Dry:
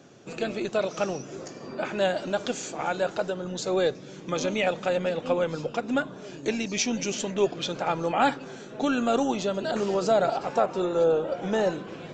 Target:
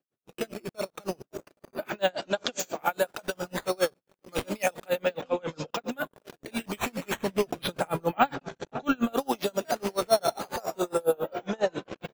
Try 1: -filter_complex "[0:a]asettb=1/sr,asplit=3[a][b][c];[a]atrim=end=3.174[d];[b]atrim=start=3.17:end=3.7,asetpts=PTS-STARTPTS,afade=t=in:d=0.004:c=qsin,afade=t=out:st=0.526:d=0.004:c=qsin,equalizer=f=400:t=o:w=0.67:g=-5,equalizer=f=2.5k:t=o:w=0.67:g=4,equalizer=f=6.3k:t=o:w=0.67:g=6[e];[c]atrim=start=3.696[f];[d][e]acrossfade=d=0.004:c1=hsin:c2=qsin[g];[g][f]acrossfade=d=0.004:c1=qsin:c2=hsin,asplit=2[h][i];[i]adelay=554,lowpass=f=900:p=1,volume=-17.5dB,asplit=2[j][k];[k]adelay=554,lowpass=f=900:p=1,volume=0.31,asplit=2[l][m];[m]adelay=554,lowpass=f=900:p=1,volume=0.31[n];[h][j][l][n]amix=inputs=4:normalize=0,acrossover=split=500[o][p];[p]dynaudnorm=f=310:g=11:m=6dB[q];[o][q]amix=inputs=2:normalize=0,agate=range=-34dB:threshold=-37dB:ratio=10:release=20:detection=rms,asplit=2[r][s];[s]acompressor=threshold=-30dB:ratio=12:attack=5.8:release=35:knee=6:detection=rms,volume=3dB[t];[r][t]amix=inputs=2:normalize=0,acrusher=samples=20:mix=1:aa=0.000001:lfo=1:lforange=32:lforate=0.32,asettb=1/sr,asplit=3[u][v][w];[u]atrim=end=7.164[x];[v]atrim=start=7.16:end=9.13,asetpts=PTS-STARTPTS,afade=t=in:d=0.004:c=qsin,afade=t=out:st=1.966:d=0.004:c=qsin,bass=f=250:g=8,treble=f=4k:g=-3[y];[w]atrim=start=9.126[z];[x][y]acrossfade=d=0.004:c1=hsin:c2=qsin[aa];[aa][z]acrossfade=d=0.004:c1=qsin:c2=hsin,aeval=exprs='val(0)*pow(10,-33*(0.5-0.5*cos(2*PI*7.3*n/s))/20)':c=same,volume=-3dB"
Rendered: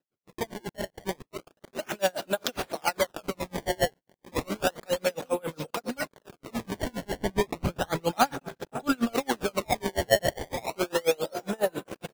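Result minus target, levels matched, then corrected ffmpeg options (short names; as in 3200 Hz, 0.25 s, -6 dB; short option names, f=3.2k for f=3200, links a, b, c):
decimation with a swept rate: distortion +10 dB
-filter_complex "[0:a]asettb=1/sr,asplit=3[a][b][c];[a]atrim=end=3.174[d];[b]atrim=start=3.17:end=3.7,asetpts=PTS-STARTPTS,afade=t=in:d=0.004:c=qsin,afade=t=out:st=0.526:d=0.004:c=qsin,equalizer=f=400:t=o:w=0.67:g=-5,equalizer=f=2.5k:t=o:w=0.67:g=4,equalizer=f=6.3k:t=o:w=0.67:g=6[e];[c]atrim=start=3.696[f];[d][e]acrossfade=d=0.004:c1=hsin:c2=qsin[g];[g][f]acrossfade=d=0.004:c1=qsin:c2=hsin,asplit=2[h][i];[i]adelay=554,lowpass=f=900:p=1,volume=-17.5dB,asplit=2[j][k];[k]adelay=554,lowpass=f=900:p=1,volume=0.31,asplit=2[l][m];[m]adelay=554,lowpass=f=900:p=1,volume=0.31[n];[h][j][l][n]amix=inputs=4:normalize=0,acrossover=split=500[o][p];[p]dynaudnorm=f=310:g=11:m=6dB[q];[o][q]amix=inputs=2:normalize=0,agate=range=-34dB:threshold=-37dB:ratio=10:release=20:detection=rms,asplit=2[r][s];[s]acompressor=threshold=-30dB:ratio=12:attack=5.8:release=35:knee=6:detection=rms,volume=3dB[t];[r][t]amix=inputs=2:normalize=0,acrusher=samples=5:mix=1:aa=0.000001:lfo=1:lforange=8:lforate=0.32,asettb=1/sr,asplit=3[u][v][w];[u]atrim=end=7.164[x];[v]atrim=start=7.16:end=9.13,asetpts=PTS-STARTPTS,afade=t=in:d=0.004:c=qsin,afade=t=out:st=1.966:d=0.004:c=qsin,bass=f=250:g=8,treble=f=4k:g=-3[y];[w]atrim=start=9.126[z];[x][y]acrossfade=d=0.004:c1=hsin:c2=qsin[aa];[aa][z]acrossfade=d=0.004:c1=qsin:c2=hsin,aeval=exprs='val(0)*pow(10,-33*(0.5-0.5*cos(2*PI*7.3*n/s))/20)':c=same,volume=-3dB"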